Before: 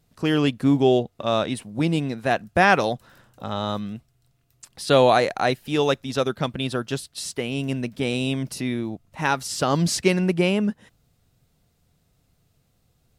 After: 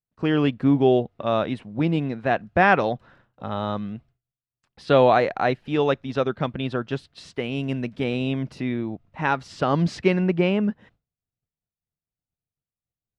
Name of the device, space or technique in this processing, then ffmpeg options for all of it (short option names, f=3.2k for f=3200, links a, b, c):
hearing-loss simulation: -filter_complex "[0:a]asettb=1/sr,asplit=3[a][b][c];[a]atrim=end=7.344[d];[b]atrim=start=7.34:end=8.04,asetpts=PTS-STARTPTS,afade=t=in:d=0.004:c=qsin,afade=t=out:st=0.696:d=0.004:c=qsin,aemphasis=mode=production:type=cd[e];[c]atrim=start=8.036[f];[d][e]acrossfade=d=0.004:c1=hsin:c2=qsin[g];[g][f]acrossfade=d=0.004:c1=qsin:c2=hsin,lowpass=2.6k,agate=range=-33dB:threshold=-47dB:ratio=3:detection=peak"